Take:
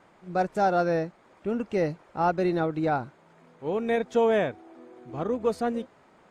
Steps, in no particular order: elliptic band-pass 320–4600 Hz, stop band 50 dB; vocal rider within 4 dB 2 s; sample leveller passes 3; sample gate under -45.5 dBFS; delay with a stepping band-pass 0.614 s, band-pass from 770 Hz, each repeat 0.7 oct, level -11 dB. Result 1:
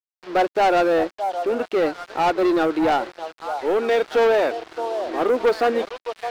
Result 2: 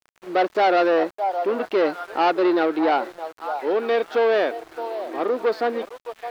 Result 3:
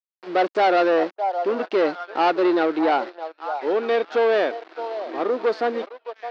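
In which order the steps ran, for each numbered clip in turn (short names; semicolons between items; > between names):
delay with a stepping band-pass > sample gate > elliptic band-pass > sample leveller > vocal rider; vocal rider > delay with a stepping band-pass > sample leveller > elliptic band-pass > sample gate; sample gate > vocal rider > delay with a stepping band-pass > sample leveller > elliptic band-pass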